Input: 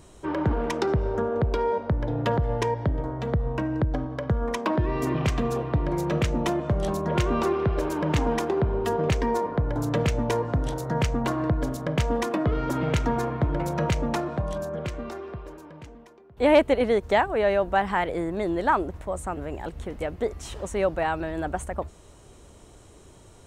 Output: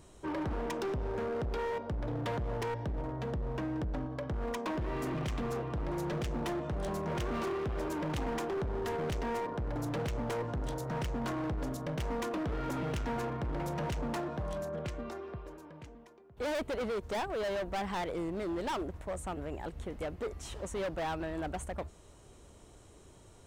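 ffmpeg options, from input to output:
-af "asoftclip=type=hard:threshold=0.0501,volume=0.501"

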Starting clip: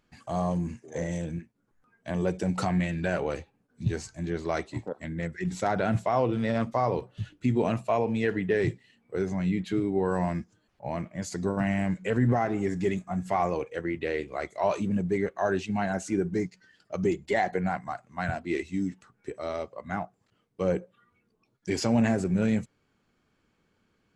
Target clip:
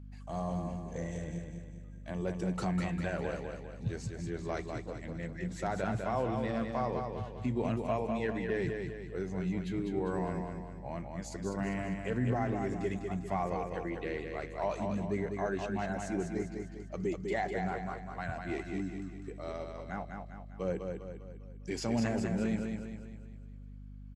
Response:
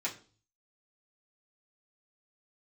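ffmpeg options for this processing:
-af "aecho=1:1:200|400|600|800|1000|1200:0.562|0.264|0.124|0.0584|0.0274|0.0129,aeval=exprs='val(0)+0.0126*(sin(2*PI*50*n/s)+sin(2*PI*2*50*n/s)/2+sin(2*PI*3*50*n/s)/3+sin(2*PI*4*50*n/s)/4+sin(2*PI*5*50*n/s)/5)':c=same,volume=0.398"

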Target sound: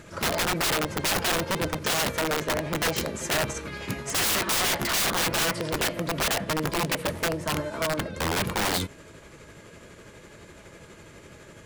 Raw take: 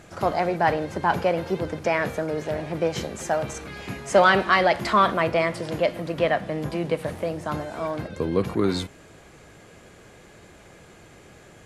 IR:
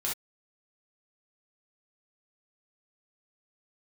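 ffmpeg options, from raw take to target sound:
-af "asuperstop=centerf=750:order=20:qfactor=6.2,tremolo=f=12:d=0.34,aeval=exprs='(mod(13.3*val(0)+1,2)-1)/13.3':c=same,volume=1.41"

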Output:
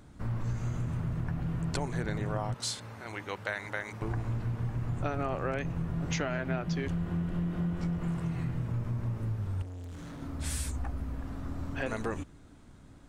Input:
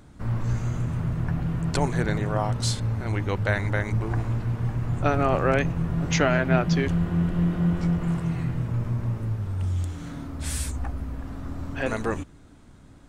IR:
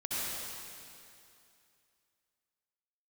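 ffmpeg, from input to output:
-filter_complex "[0:a]asettb=1/sr,asplit=3[s0][s1][s2];[s0]atrim=end=2.544[s3];[s1]atrim=start=2.54:end=4.02,asetpts=PTS-STARTPTS,afade=t=in:d=0.004:c=qsin,afade=t=out:st=1.476:d=0.004:c=qsin,highpass=f=810:p=1[s4];[s2]atrim=start=4.016[s5];[s3][s4]acrossfade=d=0.004:c1=hsin:c2=qsin[s6];[s6][s5]acrossfade=d=0.004:c1=qsin:c2=hsin,acompressor=threshold=0.0562:ratio=6,asettb=1/sr,asplit=3[s7][s8][s9];[s7]atrim=end=9.624[s10];[s8]atrim=start=9.62:end=10.22,asetpts=PTS-STARTPTS,afade=t=in:d=0.004:c=qsin,afade=t=out:st=0.596:d=0.004:c=qsin,asoftclip=type=hard:threshold=0.0141[s11];[s9]atrim=start=10.216[s12];[s10][s11]acrossfade=d=0.004:c1=hsin:c2=qsin[s13];[s13][s12]acrossfade=d=0.004:c1=qsin:c2=hsin,volume=0.668"

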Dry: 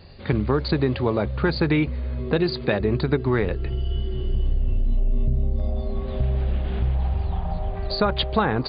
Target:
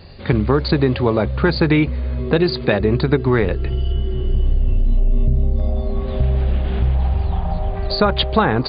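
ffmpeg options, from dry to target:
-filter_complex "[0:a]asettb=1/sr,asplit=3[s0][s1][s2];[s0]atrim=end=3.924[s3];[s1]atrim=start=3.92:end=6,asetpts=PTS-STARTPTS,afade=t=in:d=0.004:c=qsin,afade=t=out:st=2.076:d=0.004:c=qsin,acrossover=split=2800[s4][s5];[s5]acompressor=threshold=0.00112:ratio=4:attack=1:release=60[s6];[s4][s6]amix=inputs=2:normalize=0[s7];[s2]atrim=start=5.996[s8];[s3][s7]acrossfade=d=0.004:c1=hsin:c2=qsin[s9];[s9][s8]acrossfade=d=0.004:c1=qsin:c2=hsin,volume=1.88"

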